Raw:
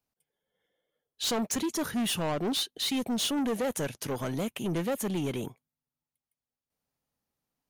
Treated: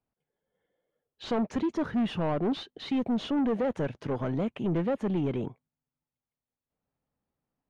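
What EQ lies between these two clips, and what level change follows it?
head-to-tape spacing loss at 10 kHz 30 dB
high-shelf EQ 4,700 Hz −8.5 dB
+3.5 dB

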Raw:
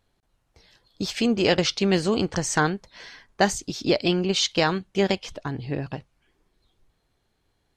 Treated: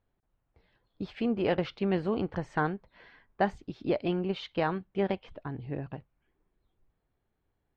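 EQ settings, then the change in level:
dynamic equaliser 850 Hz, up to +3 dB, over −32 dBFS, Q 0.98
high-frequency loss of the air 490 metres
−6.5 dB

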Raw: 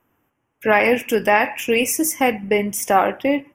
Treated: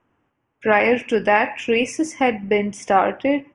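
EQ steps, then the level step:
linear-phase brick-wall low-pass 11,000 Hz
high-frequency loss of the air 120 metres
0.0 dB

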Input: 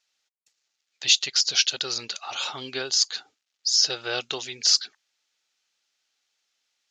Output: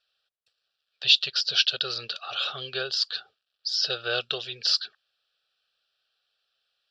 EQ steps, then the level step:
dynamic equaliser 840 Hz, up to −4 dB, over −46 dBFS, Q 1.4
high-frequency loss of the air 58 metres
phaser with its sweep stopped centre 1,400 Hz, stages 8
+4.0 dB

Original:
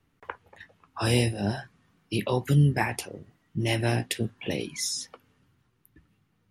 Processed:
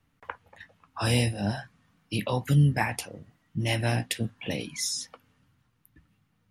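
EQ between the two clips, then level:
parametric band 380 Hz −11 dB 0.32 octaves
0.0 dB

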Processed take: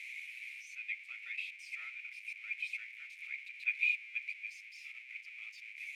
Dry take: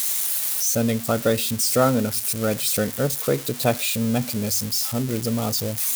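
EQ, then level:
flat-topped band-pass 2,300 Hz, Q 6.3
first difference
+13.0 dB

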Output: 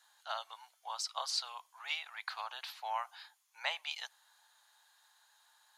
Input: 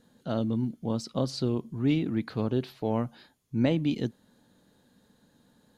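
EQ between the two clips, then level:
Butterworth high-pass 790 Hz 48 dB per octave
parametric band 6,800 Hz +2 dB
+2.5 dB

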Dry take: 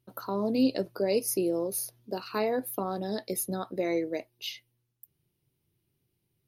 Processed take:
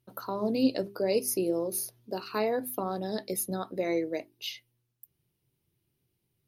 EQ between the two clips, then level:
mains-hum notches 50/100/150/200/250/300/350/400 Hz
0.0 dB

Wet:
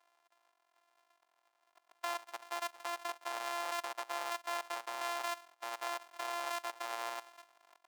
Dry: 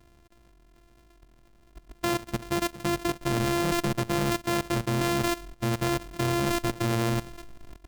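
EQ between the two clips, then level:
four-pole ladder high-pass 680 Hz, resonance 40%
high-shelf EQ 8,400 Hz −3.5 dB
−1.5 dB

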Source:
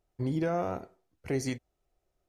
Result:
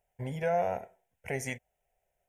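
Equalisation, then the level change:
low-shelf EQ 180 Hz −12 dB
phaser with its sweep stopped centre 1,200 Hz, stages 6
+5.5 dB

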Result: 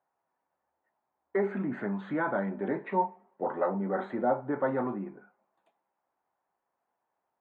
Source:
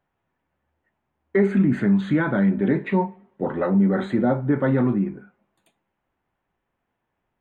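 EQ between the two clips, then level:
resonant band-pass 830 Hz, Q 1.5
0.0 dB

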